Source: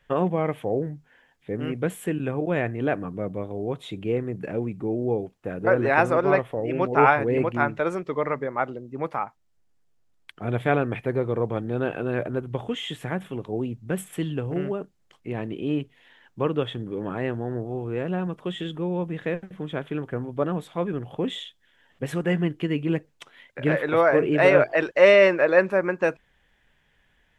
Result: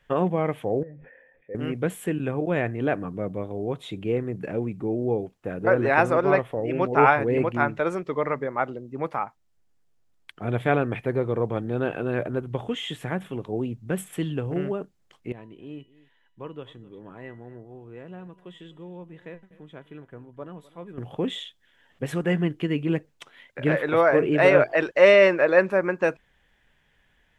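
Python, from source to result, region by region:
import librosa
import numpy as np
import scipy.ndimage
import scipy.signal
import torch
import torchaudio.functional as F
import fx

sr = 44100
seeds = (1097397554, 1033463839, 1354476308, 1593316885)

y = fx.chain(x, sr, fx.formant_cascade(vowel='e'),
    fx.sustainer(db_per_s=42.0), at=(0.83, 1.55))
y = fx.chain(y, sr, fx.comb_fb(f0_hz=990.0, decay_s=0.34, harmonics='all', damping=0.0, mix_pct=80),
    fx.echo_single(ms=254, db=-19.5), at=(15.32, 20.98))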